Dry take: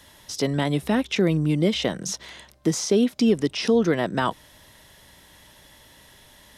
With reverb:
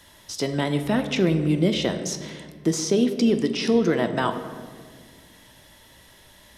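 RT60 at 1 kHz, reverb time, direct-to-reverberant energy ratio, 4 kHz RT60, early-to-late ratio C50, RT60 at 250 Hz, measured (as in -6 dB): 1.5 s, 1.8 s, 7.0 dB, 0.95 s, 9.5 dB, 2.4 s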